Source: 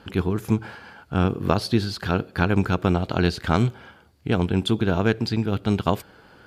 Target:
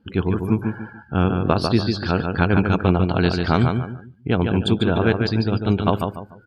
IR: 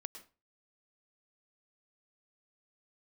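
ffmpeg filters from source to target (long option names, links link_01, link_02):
-af "aecho=1:1:146|292|438|584:0.562|0.186|0.0612|0.0202,afftdn=noise_reduction=25:noise_floor=-40,volume=2dB"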